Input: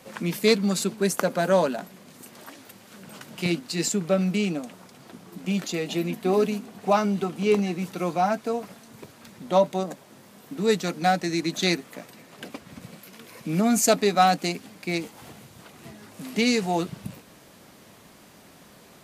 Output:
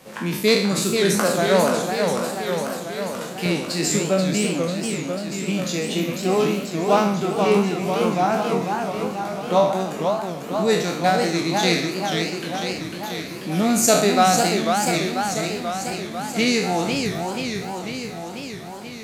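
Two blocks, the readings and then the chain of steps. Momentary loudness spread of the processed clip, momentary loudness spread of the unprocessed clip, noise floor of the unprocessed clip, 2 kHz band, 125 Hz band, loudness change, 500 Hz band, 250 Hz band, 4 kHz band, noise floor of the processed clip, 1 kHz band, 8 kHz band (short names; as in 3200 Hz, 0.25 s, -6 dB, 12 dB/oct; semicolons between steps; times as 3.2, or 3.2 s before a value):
10 LU, 22 LU, -52 dBFS, +6.0 dB, +4.5 dB, +3.0 dB, +5.0 dB, +4.0 dB, +6.5 dB, -33 dBFS, +5.0 dB, +6.5 dB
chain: spectral trails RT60 0.68 s; warbling echo 0.491 s, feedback 70%, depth 220 cents, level -5 dB; gain +1 dB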